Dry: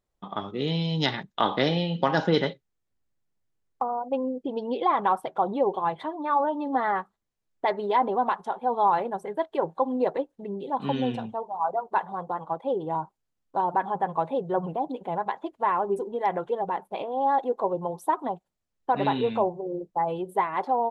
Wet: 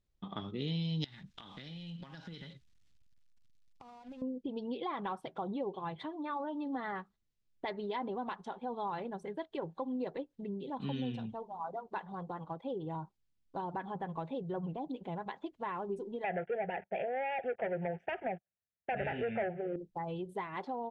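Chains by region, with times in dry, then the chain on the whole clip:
1.04–4.22 G.711 law mismatch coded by mu + bell 420 Hz -8.5 dB 1.5 oct + compressor 20:1, threshold -40 dBFS
16.24–19.76 sample leveller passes 3 + speaker cabinet 120–2700 Hz, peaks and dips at 130 Hz -8 dB, 340 Hz +5 dB, 680 Hz +7 dB, 1000 Hz -8 dB, 1700 Hz +6 dB + fixed phaser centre 1100 Hz, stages 6
whole clip: LPF 4700 Hz 12 dB/oct; bell 830 Hz -14.5 dB 2.8 oct; compressor 2:1, threshold -42 dBFS; gain +3.5 dB

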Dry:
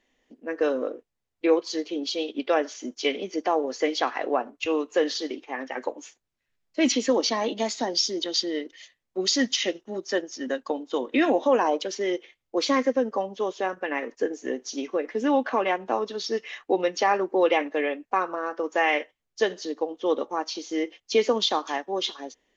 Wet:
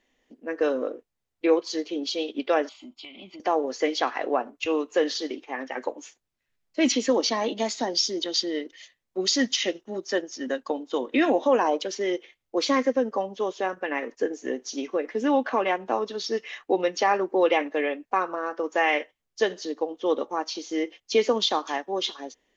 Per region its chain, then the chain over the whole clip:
2.69–3.4 fixed phaser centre 1700 Hz, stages 6 + compressor 10:1, threshold -39 dBFS
whole clip: dry

